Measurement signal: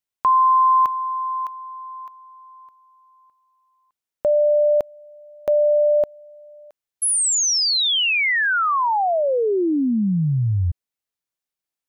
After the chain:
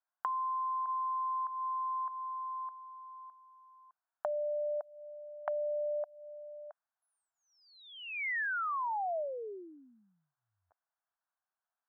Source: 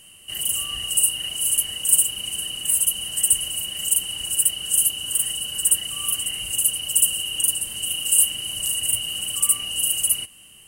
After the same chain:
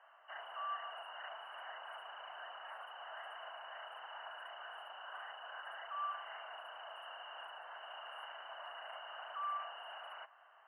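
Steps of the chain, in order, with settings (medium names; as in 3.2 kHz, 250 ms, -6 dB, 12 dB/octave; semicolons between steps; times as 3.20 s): elliptic band-pass 670–1600 Hz, stop band 70 dB; peak limiter -22.5 dBFS; compression 10:1, threshold -39 dBFS; trim +5.5 dB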